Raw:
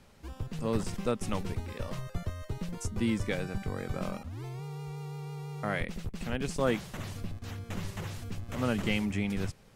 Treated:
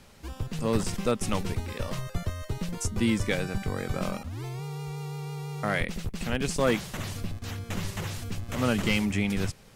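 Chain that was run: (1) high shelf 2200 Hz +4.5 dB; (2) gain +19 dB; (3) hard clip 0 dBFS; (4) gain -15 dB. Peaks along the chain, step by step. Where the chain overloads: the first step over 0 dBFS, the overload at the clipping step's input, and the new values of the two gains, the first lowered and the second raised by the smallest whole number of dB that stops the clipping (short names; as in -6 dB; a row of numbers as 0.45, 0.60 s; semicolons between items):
-12.5, +6.5, 0.0, -15.0 dBFS; step 2, 6.5 dB; step 2 +12 dB, step 4 -8 dB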